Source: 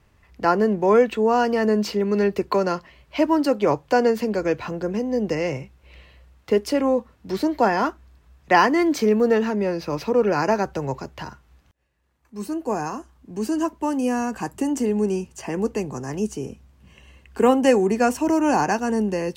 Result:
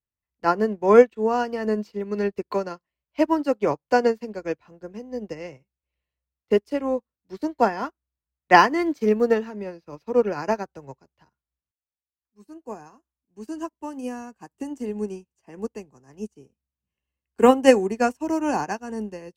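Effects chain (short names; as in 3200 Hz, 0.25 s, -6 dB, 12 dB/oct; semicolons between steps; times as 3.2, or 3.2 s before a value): upward expander 2.5:1, over -40 dBFS; gain +5 dB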